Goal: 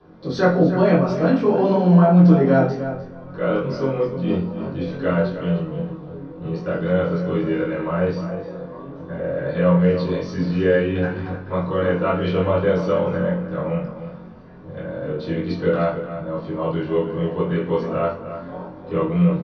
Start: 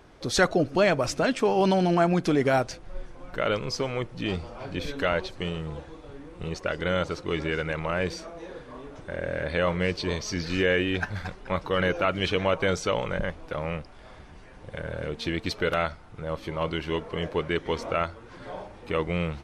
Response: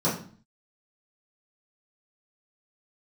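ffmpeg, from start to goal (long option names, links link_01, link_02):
-filter_complex "[0:a]lowpass=frequency=4200:width=0.5412,lowpass=frequency=4200:width=1.3066,acrossover=split=200|1400[link_01][link_02][link_03];[link_01]asoftclip=type=hard:threshold=-37dB[link_04];[link_04][link_02][link_03]amix=inputs=3:normalize=0,asplit=2[link_05][link_06];[link_06]adelay=22,volume=-3dB[link_07];[link_05][link_07]amix=inputs=2:normalize=0,asplit=2[link_08][link_09];[link_09]adelay=303,lowpass=frequency=3200:poles=1,volume=-10dB,asplit=2[link_10][link_11];[link_11]adelay=303,lowpass=frequency=3200:poles=1,volume=0.17[link_12];[link_08][link_10][link_12]amix=inputs=3:normalize=0[link_13];[1:a]atrim=start_sample=2205[link_14];[link_13][link_14]afir=irnorm=-1:irlink=0,volume=-13dB"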